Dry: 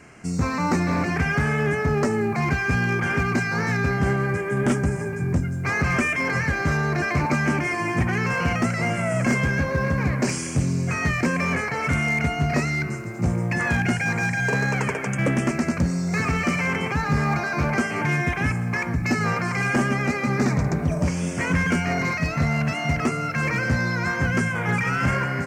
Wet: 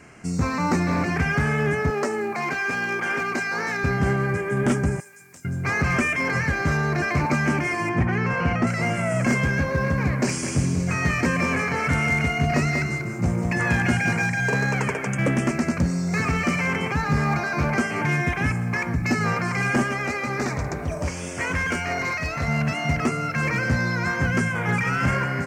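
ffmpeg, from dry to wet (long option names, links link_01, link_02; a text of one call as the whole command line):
ffmpeg -i in.wav -filter_complex "[0:a]asettb=1/sr,asplit=3[link_01][link_02][link_03];[link_01]atrim=end=1.904[link_04];[link_02]atrim=start=1.9:end=3.84,asetpts=PTS-STARTPTS,afade=type=in:duration=0.004:curve=qsin,afade=type=out:start_time=1.936:duration=0.004:curve=qsin,highpass=340[link_05];[link_03]atrim=start=3.836[link_06];[link_04][link_05]acrossfade=duration=0.004:curve1=hsin:curve2=qsin[link_07];[link_07][link_06]acrossfade=duration=0.004:curve1=qsin:curve2=hsin,asettb=1/sr,asplit=3[link_08][link_09][link_10];[link_08]atrim=end=5.004[link_11];[link_09]atrim=start=5:end=5.45,asetpts=PTS-STARTPTS,afade=type=in:duration=0.004:curve=qsin,afade=type=out:start_time=0.446:duration=0.004:curve=qsin,aderivative[link_12];[link_10]atrim=start=5.446[link_13];[link_11][link_12]acrossfade=duration=0.004:curve1=hsin:curve2=qsin[link_14];[link_14][link_13]acrossfade=duration=0.004:curve1=qsin:curve2=hsin,asettb=1/sr,asplit=3[link_15][link_16][link_17];[link_15]atrim=end=7.894[link_18];[link_16]atrim=start=7.89:end=8.67,asetpts=PTS-STARTPTS,afade=type=in:duration=0.004:curve=qsin,afade=type=out:start_time=0.776:duration=0.004:curve=qsin,aemphasis=mode=reproduction:type=75fm[link_19];[link_17]atrim=start=8.666[link_20];[link_18][link_19]acrossfade=duration=0.004:curve1=hsin:curve2=qsin[link_21];[link_21][link_20]acrossfade=duration=0.004:curve1=qsin:curve2=hsin,asettb=1/sr,asplit=3[link_22][link_23][link_24];[link_22]atrim=end=10.244[link_25];[link_23]atrim=start=10.24:end=14.22,asetpts=PTS-STARTPTS,afade=type=in:duration=0.004:curve=qsin,afade=type=out:start_time=3.976:duration=0.004:curve=qsin,aecho=1:1:191:0.501,atrim=end_sample=175518[link_26];[link_24]atrim=start=14.216[link_27];[link_25][link_26]acrossfade=duration=0.004:curve1=hsin:curve2=qsin[link_28];[link_28][link_27]acrossfade=duration=0.004:curve1=qsin:curve2=hsin,asettb=1/sr,asplit=3[link_29][link_30][link_31];[link_29]atrim=end=19.834[link_32];[link_30]atrim=start=19.83:end=22.48,asetpts=PTS-STARTPTS,afade=type=in:duration=0.004:curve=qsin,afade=type=out:start_time=2.646:duration=0.004:curve=qsin,equalizer=frequency=180:width_type=o:width=1.2:gain=-11[link_33];[link_31]atrim=start=22.476[link_34];[link_32][link_33]acrossfade=duration=0.004:curve1=hsin:curve2=qsin[link_35];[link_35][link_34]acrossfade=duration=0.004:curve1=qsin:curve2=hsin" out.wav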